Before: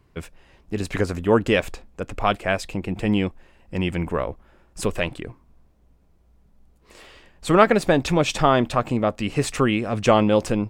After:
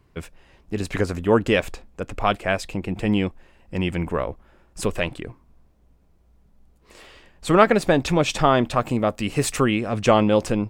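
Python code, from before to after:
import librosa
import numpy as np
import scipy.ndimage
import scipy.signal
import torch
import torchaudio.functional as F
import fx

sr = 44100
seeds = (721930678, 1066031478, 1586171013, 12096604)

y = fx.high_shelf(x, sr, hz=8900.0, db=10.5, at=(8.76, 9.65))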